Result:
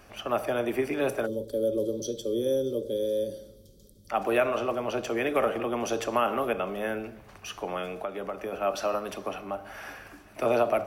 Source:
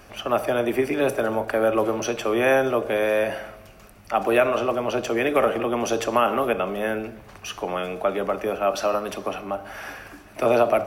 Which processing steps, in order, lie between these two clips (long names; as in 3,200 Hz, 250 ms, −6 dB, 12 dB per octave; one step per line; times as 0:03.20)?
0:01.26–0:04.09: gain on a spectral selection 600–3,100 Hz −28 dB
0:07.88–0:08.53: downward compressor 5 to 1, threshold −25 dBFS, peak gain reduction 8 dB
level −5.5 dB